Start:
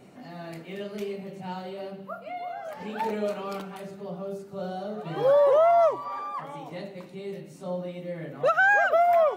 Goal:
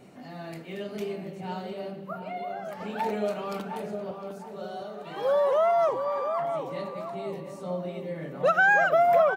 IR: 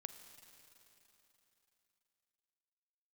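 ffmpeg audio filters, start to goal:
-filter_complex "[0:a]asettb=1/sr,asplit=3[s0][s1][s2];[s0]atrim=end=4.114[s3];[s1]atrim=start=4.11:end=5.89,asetpts=PTS-STARTPTS,afade=t=in:d=0.004:c=qsin,afade=t=out:st=1.776:d=0.004:c=qsin,highpass=f=730:p=1[s4];[s2]atrim=start=5.886[s5];[s3][s4]acrossfade=d=0.004:c1=hsin:c2=qsin[s6];[s6][s5]acrossfade=d=0.004:c1=qsin:c2=hsin,asplit=2[s7][s8];[s8]adelay=707,lowpass=f=1100:p=1,volume=0.501,asplit=2[s9][s10];[s10]adelay=707,lowpass=f=1100:p=1,volume=0.46,asplit=2[s11][s12];[s12]adelay=707,lowpass=f=1100:p=1,volume=0.46,asplit=2[s13][s14];[s14]adelay=707,lowpass=f=1100:p=1,volume=0.46,asplit=2[s15][s16];[s16]adelay=707,lowpass=f=1100:p=1,volume=0.46,asplit=2[s17][s18];[s18]adelay=707,lowpass=f=1100:p=1,volume=0.46[s19];[s7][s9][s11][s13][s15][s17][s19]amix=inputs=7:normalize=0"

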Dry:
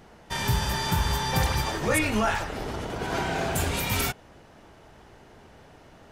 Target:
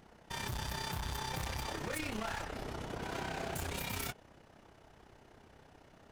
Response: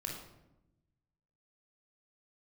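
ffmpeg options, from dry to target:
-af "asoftclip=type=hard:threshold=0.0376,tremolo=f=32:d=0.621,volume=0.531"

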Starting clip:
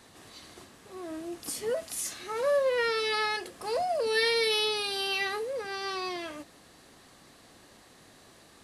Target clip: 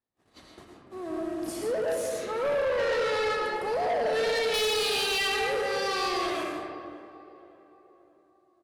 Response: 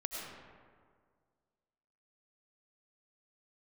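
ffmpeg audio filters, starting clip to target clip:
-filter_complex "[0:a]agate=range=0.0112:threshold=0.00398:ratio=16:detection=peak,asetnsamples=n=441:p=0,asendcmd='4.54 highshelf g 2',highshelf=f=2400:g=-11,asplit=2[s0][s1];[s1]adelay=577,lowpass=f=1500:p=1,volume=0.112,asplit=2[s2][s3];[s3]adelay=577,lowpass=f=1500:p=1,volume=0.51,asplit=2[s4][s5];[s5]adelay=577,lowpass=f=1500:p=1,volume=0.51,asplit=2[s6][s7];[s7]adelay=577,lowpass=f=1500:p=1,volume=0.51[s8];[s0][s2][s4][s6][s8]amix=inputs=5:normalize=0[s9];[1:a]atrim=start_sample=2205[s10];[s9][s10]afir=irnorm=-1:irlink=0,asoftclip=type=tanh:threshold=0.0316,volume=2.11"

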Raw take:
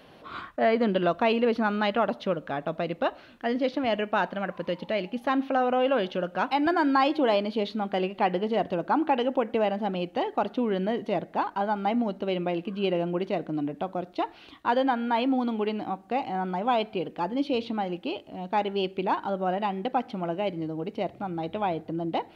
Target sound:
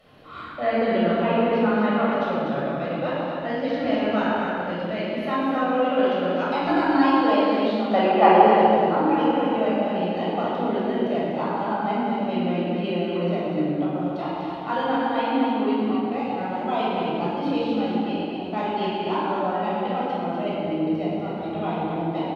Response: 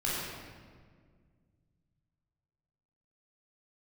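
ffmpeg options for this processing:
-filter_complex "[0:a]asettb=1/sr,asplit=3[s0][s1][s2];[s0]atrim=end=1.034[s3];[s1]atrim=start=1.03:end=2.12,asetpts=PTS-STARTPTS,afade=t=in:d=0.004:c=qsin,afade=t=out:st=1.086:d=0.004:c=qsin,acrossover=split=2600[s4][s5];[s5]acompressor=threshold=0.00447:ratio=4:attack=1:release=60[s6];[s4][s6]amix=inputs=2:normalize=0[s7];[s2]atrim=start=2.116[s8];[s3][s7]acrossfade=d=0.004:c1=hsin:c2=qsin[s9];[s9][s8]acrossfade=d=0.004:c1=qsin:c2=hsin,asettb=1/sr,asplit=3[s10][s11][s12];[s10]atrim=end=7.894[s13];[s11]atrim=start=7.89:end=8.48,asetpts=PTS-STARTPTS,afade=t=in:d=0.004:c=qsin,afade=t=out:st=0.586:d=0.004:c=qsin,equalizer=f=850:t=o:w=2.8:g=12.5[s14];[s12]atrim=start=8.476[s15];[s13][s14]acrossfade=d=0.004:c1=hsin:c2=qsin[s16];[s16][s15]acrossfade=d=0.004:c1=qsin:c2=hsin,aecho=1:1:245:0.531[s17];[1:a]atrim=start_sample=2205,asetrate=37485,aresample=44100[s18];[s17][s18]afir=irnorm=-1:irlink=0,volume=0.447"

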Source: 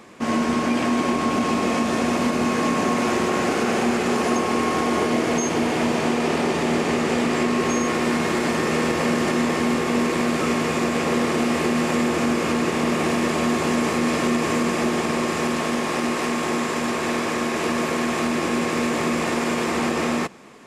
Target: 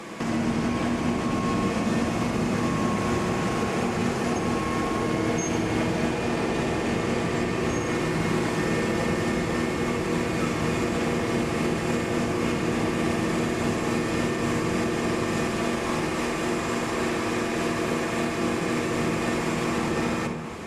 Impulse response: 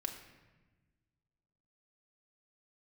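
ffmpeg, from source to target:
-filter_complex "[0:a]acrossover=split=130[s0][s1];[s1]acompressor=threshold=0.0158:ratio=4[s2];[s0][s2]amix=inputs=2:normalize=0[s3];[1:a]atrim=start_sample=2205,asetrate=26019,aresample=44100[s4];[s3][s4]afir=irnorm=-1:irlink=0,volume=2"

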